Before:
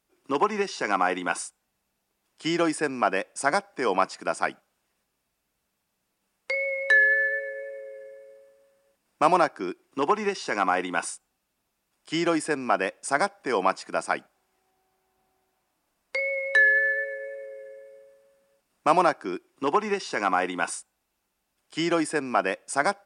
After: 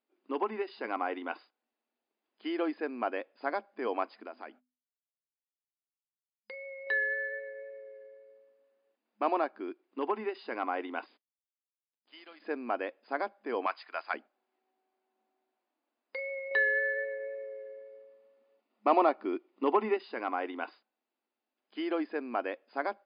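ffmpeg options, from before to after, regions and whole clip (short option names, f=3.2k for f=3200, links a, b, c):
-filter_complex "[0:a]asettb=1/sr,asplit=3[a][b][c];[a]atrim=end=4.264[d];[b]atrim=start=4.26:end=6.87,asetpts=PTS-STARTPTS,afade=t=in:d=0.004:c=qsin,afade=t=out:st=2.606:d=0.004:c=qsin,agate=range=-33dB:threshold=-51dB:ratio=3:release=100:detection=peak,bandreject=f=50:t=h:w=6,bandreject=f=100:t=h:w=6,bandreject=f=150:t=h:w=6,bandreject=f=200:t=h:w=6,bandreject=f=250:t=h:w=6,acompressor=threshold=-36dB:ratio=2:attack=3.2:release=140:knee=1:detection=peak[e];[c]atrim=start=6.866[f];[d][e]acrossfade=d=0.004:c1=hsin:c2=qsin[g];[g][f]acrossfade=d=0.004:c1=qsin:c2=hsin,asettb=1/sr,asplit=3[h][i][j];[h]atrim=end=11.064[k];[i]atrim=start=11.06:end=12.42,asetpts=PTS-STARTPTS,afade=t=in:d=0.004:c=qsin,afade=t=out:st=1.356:d=0.004:c=qsin,aderivative,acrusher=bits=8:dc=4:mix=0:aa=0.000001[l];[j]atrim=start=12.416[m];[k][l]acrossfade=d=0.004:c1=hsin:c2=qsin[n];[n][m]acrossfade=d=0.004:c1=qsin:c2=hsin,asettb=1/sr,asplit=3[o][p][q];[o]atrim=end=13.664[r];[p]atrim=start=13.66:end=14.14,asetpts=PTS-STARTPTS,afade=t=in:d=0.004:c=qsin,afade=t=out:st=0.476:d=0.004:c=qsin,highpass=1.2k,acontrast=81[s];[q]atrim=start=14.136[t];[r][s]acrossfade=d=0.004:c1=hsin:c2=qsin[u];[u][t]acrossfade=d=0.004:c1=qsin:c2=hsin,asettb=1/sr,asplit=3[v][w][x];[v]atrim=end=16.514[y];[w]atrim=start=16.51:end=19.97,asetpts=PTS-STARTPTS,afade=t=in:d=0.004:c=qsin,afade=t=out:st=3.456:d=0.004:c=qsin,highshelf=f=5.1k:g=-5,acontrast=47,asuperstop=centerf=1600:order=4:qfactor=7.3[z];[x]atrim=start=19.966[aa];[y][z]acrossfade=d=0.004:c1=hsin:c2=qsin[ab];[ab][aa]acrossfade=d=0.004:c1=qsin:c2=hsin,equalizer=f=1.3k:t=o:w=1.5:g=-3.5,afftfilt=real='re*between(b*sr/4096,210,5000)':imag='im*between(b*sr/4096,210,5000)':win_size=4096:overlap=0.75,aemphasis=mode=reproduction:type=75fm,volume=-7.5dB"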